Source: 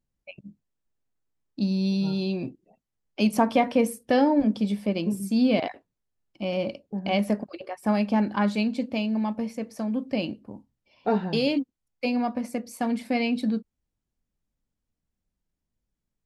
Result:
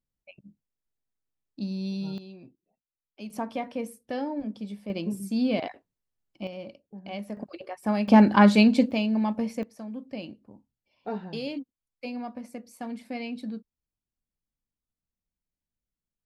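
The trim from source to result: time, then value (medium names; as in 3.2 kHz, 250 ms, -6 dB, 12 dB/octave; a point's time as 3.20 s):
-7 dB
from 2.18 s -17.5 dB
from 3.30 s -11 dB
from 4.90 s -4 dB
from 6.47 s -12 dB
from 7.37 s -2.5 dB
from 8.08 s +7.5 dB
from 8.91 s +1 dB
from 9.63 s -9.5 dB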